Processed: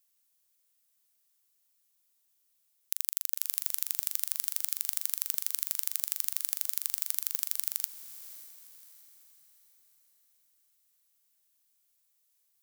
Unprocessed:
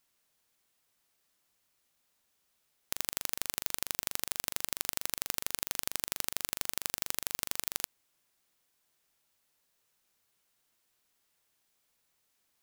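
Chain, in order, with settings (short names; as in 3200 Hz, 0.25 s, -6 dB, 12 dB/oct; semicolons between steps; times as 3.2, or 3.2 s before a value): pre-emphasis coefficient 0.8; on a send: diffused feedback echo 0.57 s, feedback 45%, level -14 dB; on the sum: gain +1 dB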